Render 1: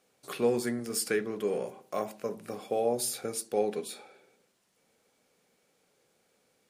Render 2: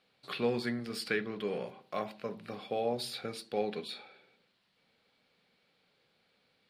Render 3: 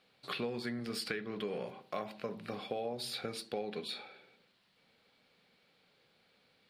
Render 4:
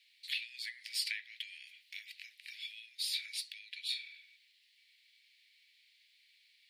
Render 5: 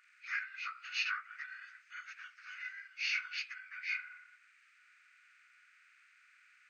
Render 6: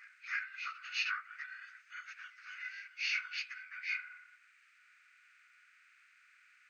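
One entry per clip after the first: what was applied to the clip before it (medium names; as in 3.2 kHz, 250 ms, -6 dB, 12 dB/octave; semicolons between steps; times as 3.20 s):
FFT filter 180 Hz 0 dB, 380 Hz -6 dB, 4.3 kHz +5 dB, 6.3 kHz -16 dB
compression 6:1, threshold -37 dBFS, peak gain reduction 11.5 dB; trim +2.5 dB
steep high-pass 1.9 kHz 72 dB/octave; trim +5 dB
frequency axis rescaled in octaves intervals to 80%; transient shaper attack -6 dB, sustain -2 dB; trim +4.5 dB
reverse echo 314 ms -20.5 dB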